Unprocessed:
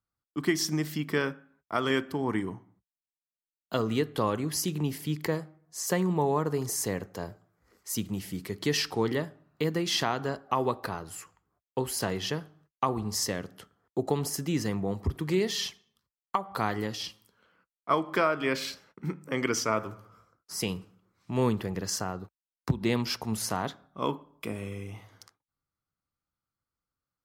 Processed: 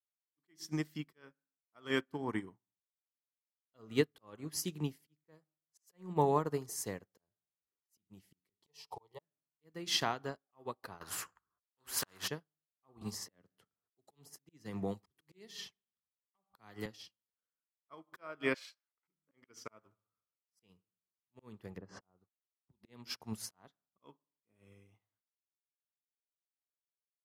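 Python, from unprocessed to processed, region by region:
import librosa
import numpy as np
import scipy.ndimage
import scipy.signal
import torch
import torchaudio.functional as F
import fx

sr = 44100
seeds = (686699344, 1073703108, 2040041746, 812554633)

y = fx.chain(x, sr, fx.peak_eq(hz=940.0, db=12.5, octaves=0.62),
    fx.fixed_phaser(hz=630.0, stages=4),
    fx.auto_swell(attack_ms=275.0), at=(8.63, 9.21))
y = fx.chain(y, sr, fx.band_shelf(hz=1300.0, db=12.0, octaves=1.0),
    fx.spectral_comp(ratio=2.0), at=(11.01, 12.28))
y = fx.chain(y, sr, fx.highpass(hz=110.0, slope=6),
    fx.low_shelf(hz=160.0, db=6.0),
    fx.band_squash(depth_pct=70), at=(13.01, 16.86))
y = fx.chain(y, sr, fx.highpass(hz=700.0, slope=24),
    fx.peak_eq(hz=15000.0, db=-11.0, octaves=0.34), at=(18.54, 19.08))
y = fx.chain(y, sr, fx.lowpass(hz=1100.0, slope=12),
    fx.pre_swell(db_per_s=50.0), at=(21.78, 22.18))
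y = fx.low_shelf(y, sr, hz=470.0, db=-2.0)
y = fx.auto_swell(y, sr, attack_ms=282.0)
y = fx.upward_expand(y, sr, threshold_db=-50.0, expansion=2.5)
y = y * librosa.db_to_amplitude(1.0)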